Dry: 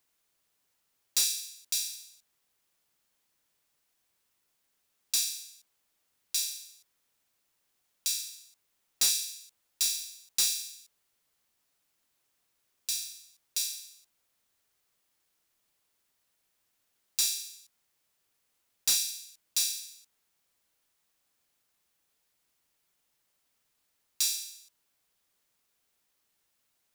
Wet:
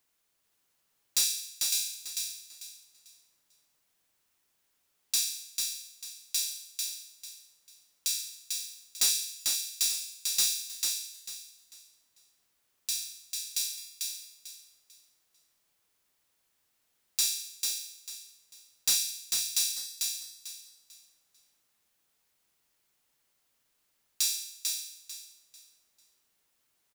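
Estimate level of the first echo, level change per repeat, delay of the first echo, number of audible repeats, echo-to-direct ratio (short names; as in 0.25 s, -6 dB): -4.0 dB, -11.5 dB, 0.445 s, 3, -3.5 dB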